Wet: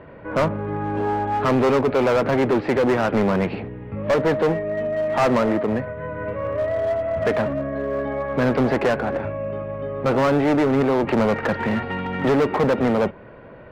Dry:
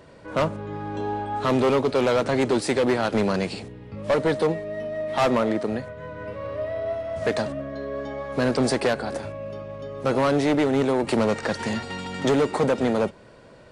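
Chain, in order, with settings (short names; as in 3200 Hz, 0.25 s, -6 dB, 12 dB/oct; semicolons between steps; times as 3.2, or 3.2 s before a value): LPF 2400 Hz 24 dB/oct; in parallel at -6 dB: wavefolder -25.5 dBFS; on the sum: gain +3 dB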